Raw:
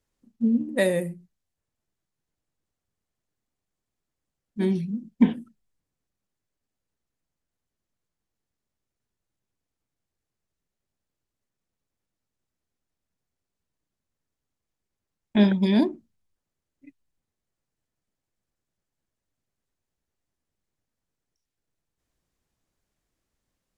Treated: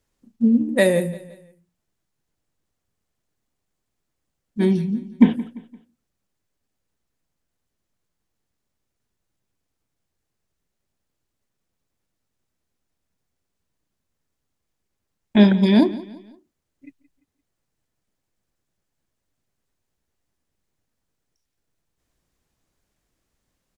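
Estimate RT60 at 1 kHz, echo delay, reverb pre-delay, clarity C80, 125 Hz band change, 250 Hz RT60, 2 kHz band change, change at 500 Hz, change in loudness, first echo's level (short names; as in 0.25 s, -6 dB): none, 0.172 s, none, none, +5.5 dB, none, +5.5 dB, +5.5 dB, +5.5 dB, -18.0 dB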